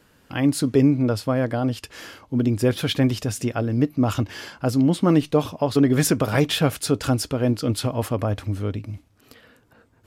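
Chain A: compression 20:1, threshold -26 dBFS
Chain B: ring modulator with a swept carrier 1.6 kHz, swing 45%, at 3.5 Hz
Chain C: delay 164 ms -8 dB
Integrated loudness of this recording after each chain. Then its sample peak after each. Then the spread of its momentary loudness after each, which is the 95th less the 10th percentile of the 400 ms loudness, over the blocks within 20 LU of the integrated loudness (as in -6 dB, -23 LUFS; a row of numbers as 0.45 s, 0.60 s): -32.0 LUFS, -23.0 LUFS, -21.5 LUFS; -14.5 dBFS, -7.0 dBFS, -6.0 dBFS; 6 LU, 10 LU, 10 LU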